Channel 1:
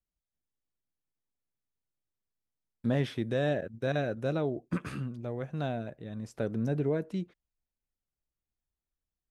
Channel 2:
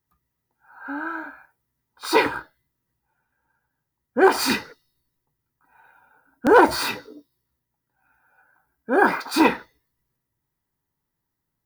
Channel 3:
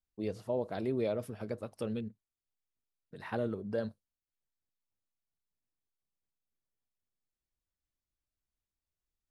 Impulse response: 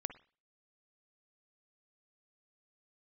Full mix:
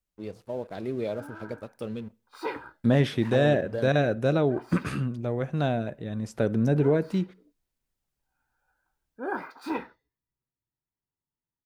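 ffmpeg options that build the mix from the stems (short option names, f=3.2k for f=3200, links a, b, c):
-filter_complex "[0:a]volume=1dB,asplit=3[a][b][c];[b]volume=-6.5dB[d];[1:a]highshelf=f=2.9k:g=-10,adelay=300,volume=-17dB[e];[2:a]aeval=exprs='sgn(val(0))*max(abs(val(0))-0.00188,0)':c=same,volume=-3dB,asplit=2[f][g];[g]volume=-10.5dB[h];[c]apad=whole_len=527102[i];[e][i]sidechaincompress=threshold=-37dB:ratio=8:attack=8.4:release=779[j];[3:a]atrim=start_sample=2205[k];[d][h]amix=inputs=2:normalize=0[l];[l][k]afir=irnorm=-1:irlink=0[m];[a][j][f][m]amix=inputs=4:normalize=0,dynaudnorm=f=440:g=3:m=3.5dB"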